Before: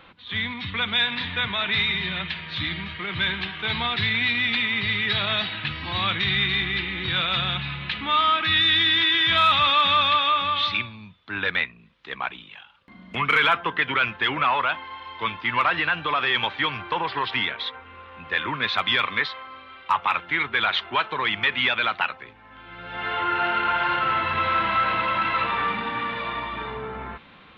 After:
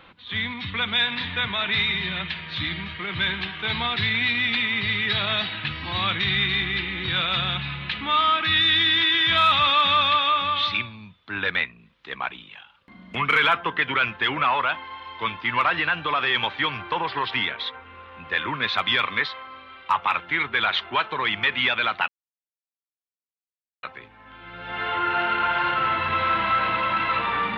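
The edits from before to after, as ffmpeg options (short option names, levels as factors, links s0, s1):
-filter_complex "[0:a]asplit=2[s0][s1];[s0]atrim=end=22.08,asetpts=PTS-STARTPTS,afade=t=out:st=22.076:d=0.004:c=hsin,apad=pad_dur=1.75[s2];[s1]atrim=start=22.08,asetpts=PTS-STARTPTS,afade=t=in:d=0.004:c=hsin[s3];[s2][s3]concat=n=2:v=0:a=1"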